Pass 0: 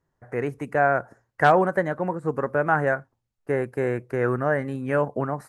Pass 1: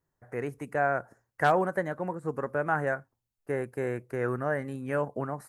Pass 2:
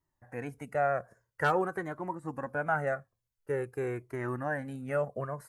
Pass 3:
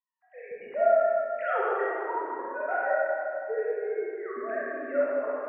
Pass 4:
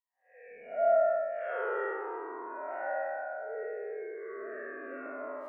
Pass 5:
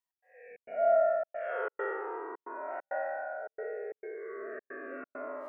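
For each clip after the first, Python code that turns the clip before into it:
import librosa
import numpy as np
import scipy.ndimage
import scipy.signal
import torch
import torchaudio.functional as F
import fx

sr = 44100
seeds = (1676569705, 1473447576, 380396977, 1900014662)

y1 = fx.high_shelf(x, sr, hz=8200.0, db=11.0)
y1 = y1 * librosa.db_to_amplitude(-6.5)
y2 = fx.comb_cascade(y1, sr, direction='falling', hz=0.48)
y2 = y2 * librosa.db_to_amplitude(2.0)
y3 = fx.sine_speech(y2, sr)
y3 = fx.rev_freeverb(y3, sr, rt60_s=2.6, hf_ratio=0.6, predelay_ms=5, drr_db=-8.5)
y3 = y3 * librosa.db_to_amplitude(-5.0)
y4 = fx.spec_blur(y3, sr, span_ms=156.0)
y4 = fx.comb_cascade(y4, sr, direction='falling', hz=0.37)
y5 = fx.step_gate(y4, sr, bpm=134, pattern='x.xxx.xxxx', floor_db=-60.0, edge_ms=4.5)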